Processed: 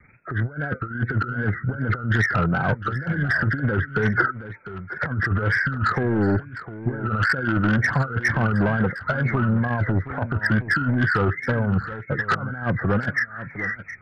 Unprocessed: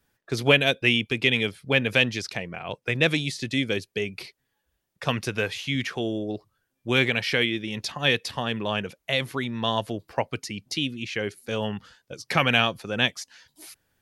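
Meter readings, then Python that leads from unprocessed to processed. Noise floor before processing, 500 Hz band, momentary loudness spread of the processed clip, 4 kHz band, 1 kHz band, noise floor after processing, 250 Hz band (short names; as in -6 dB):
-78 dBFS, -1.0 dB, 8 LU, -15.5 dB, +5.5 dB, -42 dBFS, +5.0 dB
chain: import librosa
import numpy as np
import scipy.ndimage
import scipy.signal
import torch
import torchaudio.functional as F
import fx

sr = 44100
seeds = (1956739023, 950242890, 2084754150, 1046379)

p1 = fx.freq_compress(x, sr, knee_hz=1200.0, ratio=4.0)
p2 = fx.peak_eq(p1, sr, hz=110.0, db=11.5, octaves=1.9)
p3 = fx.over_compress(p2, sr, threshold_db=-25.0, ratio=-0.5)
p4 = 10.0 ** (-21.0 / 20.0) * np.tanh(p3 / 10.0 ** (-21.0 / 20.0))
p5 = fx.spec_box(p4, sr, start_s=4.18, length_s=0.69, low_hz=240.0, high_hz=1600.0, gain_db=9)
p6 = p5 + fx.echo_single(p5, sr, ms=712, db=-13.5, dry=0)
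p7 = fx.wow_flutter(p6, sr, seeds[0], rate_hz=2.1, depth_cents=120.0)
y = F.gain(torch.from_numpy(p7), 6.5).numpy()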